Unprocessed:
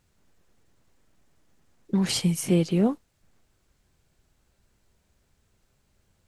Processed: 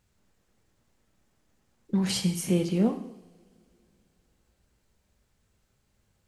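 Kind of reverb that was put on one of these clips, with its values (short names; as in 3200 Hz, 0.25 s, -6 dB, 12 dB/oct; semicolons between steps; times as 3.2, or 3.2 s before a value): two-slope reverb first 0.77 s, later 3.5 s, from -26 dB, DRR 6.5 dB; gain -3.5 dB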